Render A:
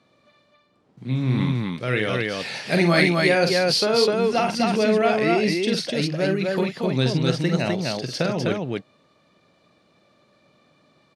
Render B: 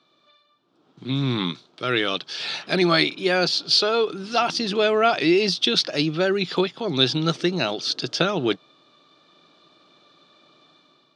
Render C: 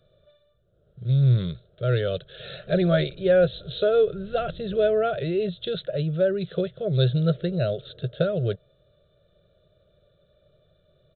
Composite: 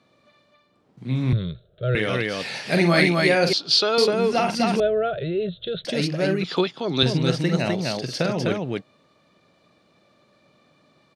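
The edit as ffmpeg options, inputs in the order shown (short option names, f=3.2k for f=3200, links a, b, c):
-filter_complex "[2:a]asplit=2[a][b];[1:a]asplit=2[c][d];[0:a]asplit=5[e][f][g][h][i];[e]atrim=end=1.332[j];[a]atrim=start=1.328:end=1.952[k];[f]atrim=start=1.948:end=3.532[l];[c]atrim=start=3.528:end=3.982[m];[g]atrim=start=3.978:end=4.802[n];[b]atrim=start=4.798:end=5.852[o];[h]atrim=start=5.848:end=6.442[p];[d]atrim=start=6.438:end=7.032[q];[i]atrim=start=7.028[r];[j][k]acrossfade=d=0.004:c1=hsin:c2=hsin[s];[s][l]acrossfade=d=0.004:c1=hsin:c2=hsin[t];[t][m]acrossfade=d=0.004:c1=hsin:c2=hsin[u];[u][n]acrossfade=d=0.004:c1=hsin:c2=hsin[v];[v][o]acrossfade=d=0.004:c1=hsin:c2=hsin[w];[w][p]acrossfade=d=0.004:c1=hsin:c2=hsin[x];[x][q]acrossfade=d=0.004:c1=hsin:c2=hsin[y];[y][r]acrossfade=d=0.004:c1=hsin:c2=hsin"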